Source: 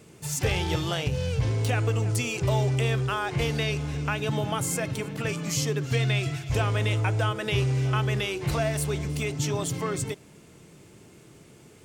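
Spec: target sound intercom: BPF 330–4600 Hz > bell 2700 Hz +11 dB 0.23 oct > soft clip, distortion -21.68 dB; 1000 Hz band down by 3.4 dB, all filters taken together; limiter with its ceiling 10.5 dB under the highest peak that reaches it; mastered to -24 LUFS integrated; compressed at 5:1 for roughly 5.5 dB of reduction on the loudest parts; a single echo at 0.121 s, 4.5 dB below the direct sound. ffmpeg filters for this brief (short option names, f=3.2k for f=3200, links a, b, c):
-af "equalizer=f=1k:t=o:g=-4.5,acompressor=threshold=-27dB:ratio=5,alimiter=level_in=3.5dB:limit=-24dB:level=0:latency=1,volume=-3.5dB,highpass=330,lowpass=4.6k,equalizer=f=2.7k:t=o:w=0.23:g=11,aecho=1:1:121:0.596,asoftclip=threshold=-26.5dB,volume=13dB"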